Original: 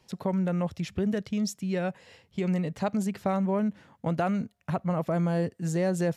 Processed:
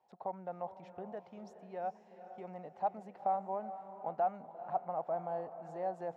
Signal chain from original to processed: band-pass 770 Hz, Q 5.7; diffused feedback echo 0.457 s, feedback 42%, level -11.5 dB; gain +2 dB

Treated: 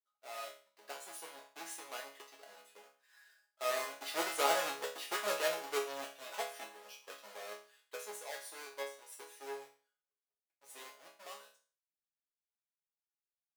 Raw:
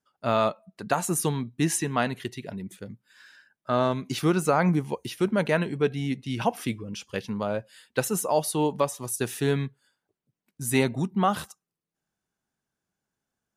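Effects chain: half-waves squared off; Doppler pass-by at 4.82, 8 m/s, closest 7.2 m; HPF 450 Hz 24 dB/oct; resonator bank C#3 minor, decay 0.4 s; gain +6.5 dB

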